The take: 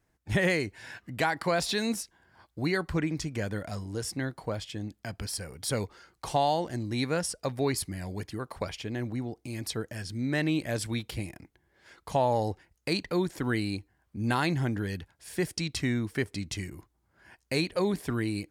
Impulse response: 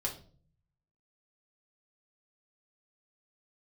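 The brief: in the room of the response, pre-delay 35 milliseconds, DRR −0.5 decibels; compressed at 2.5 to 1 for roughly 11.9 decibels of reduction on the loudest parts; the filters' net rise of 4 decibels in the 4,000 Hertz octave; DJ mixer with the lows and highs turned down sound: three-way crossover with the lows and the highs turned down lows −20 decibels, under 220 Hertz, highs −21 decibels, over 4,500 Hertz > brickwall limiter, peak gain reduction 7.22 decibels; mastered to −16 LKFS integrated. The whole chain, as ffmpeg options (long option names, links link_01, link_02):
-filter_complex "[0:a]equalizer=frequency=4000:width_type=o:gain=9,acompressor=threshold=-39dB:ratio=2.5,asplit=2[link_01][link_02];[1:a]atrim=start_sample=2205,adelay=35[link_03];[link_02][link_03]afir=irnorm=-1:irlink=0,volume=-2dB[link_04];[link_01][link_04]amix=inputs=2:normalize=0,acrossover=split=220 4500:gain=0.1 1 0.0891[link_05][link_06][link_07];[link_05][link_06][link_07]amix=inputs=3:normalize=0,volume=23.5dB,alimiter=limit=-4.5dB:level=0:latency=1"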